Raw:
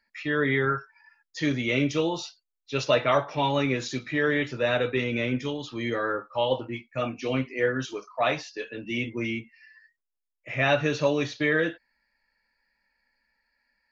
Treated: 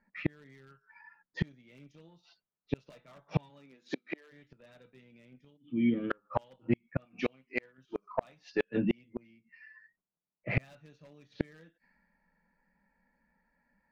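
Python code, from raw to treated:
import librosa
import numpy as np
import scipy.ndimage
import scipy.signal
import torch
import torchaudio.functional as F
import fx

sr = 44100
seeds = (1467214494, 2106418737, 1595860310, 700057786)

y = fx.env_lowpass(x, sr, base_hz=1100.0, full_db=-19.5)
y = fx.cheby_harmonics(y, sr, harmonics=(5, 7, 8), levels_db=(-34, -26, -31), full_scale_db=-8.0)
y = fx.formant_cascade(y, sr, vowel='i', at=(5.56, 6.1), fade=0.02)
y = fx.low_shelf(y, sr, hz=340.0, db=-9.5, at=(7.05, 7.78))
y = 10.0 ** (-16.0 / 20.0) * (np.abs((y / 10.0 ** (-16.0 / 20.0) + 3.0) % 4.0 - 2.0) - 1.0)
y = fx.peak_eq(y, sr, hz=180.0, db=14.5, octaves=0.6)
y = fx.gate_flip(y, sr, shuts_db=-23.0, range_db=-40)
y = fx.highpass(y, sr, hz=fx.line((3.49, 130.0), (4.31, 400.0)), slope=24, at=(3.49, 4.31), fade=0.02)
y = F.gain(torch.from_numpy(y), 7.5).numpy()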